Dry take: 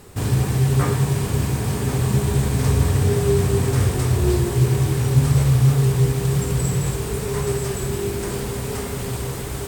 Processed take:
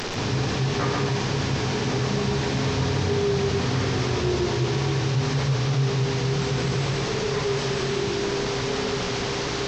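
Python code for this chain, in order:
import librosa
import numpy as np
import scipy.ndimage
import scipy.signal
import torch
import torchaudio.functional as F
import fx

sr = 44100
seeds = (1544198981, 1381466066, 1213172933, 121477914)

y = fx.delta_mod(x, sr, bps=32000, step_db=-26.5)
y = fx.peak_eq(y, sr, hz=60.0, db=-14.5, octaves=1.9)
y = y + 10.0 ** (-3.5 / 20.0) * np.pad(y, (int(138 * sr / 1000.0), 0))[:len(y)]
y = fx.env_flatten(y, sr, amount_pct=50)
y = y * librosa.db_to_amplitude(-5.0)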